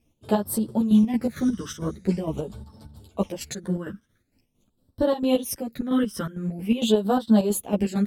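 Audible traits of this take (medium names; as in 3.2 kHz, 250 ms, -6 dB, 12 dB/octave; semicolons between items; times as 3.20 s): phasing stages 12, 0.45 Hz, lowest notch 760–2300 Hz; chopped level 4.4 Hz, depth 60%, duty 55%; a shimmering, thickened sound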